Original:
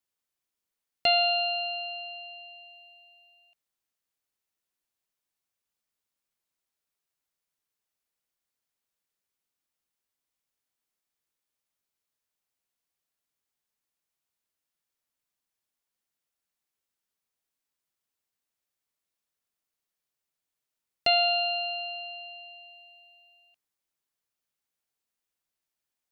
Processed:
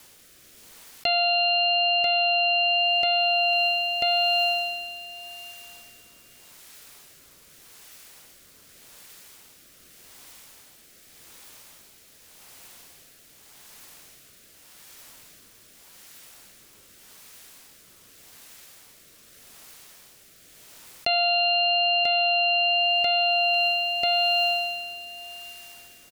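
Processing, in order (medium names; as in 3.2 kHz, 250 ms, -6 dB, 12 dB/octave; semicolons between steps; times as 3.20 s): feedback delay 990 ms, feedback 33%, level -17 dB; rotary cabinet horn 0.85 Hz; level flattener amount 100%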